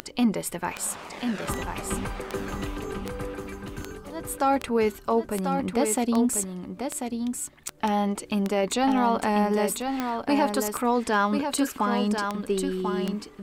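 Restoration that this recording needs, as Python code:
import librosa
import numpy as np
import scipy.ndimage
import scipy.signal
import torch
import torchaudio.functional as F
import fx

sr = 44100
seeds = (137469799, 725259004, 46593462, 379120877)

y = fx.fix_declick_ar(x, sr, threshold=10.0)
y = fx.fix_echo_inverse(y, sr, delay_ms=1041, level_db=-6.0)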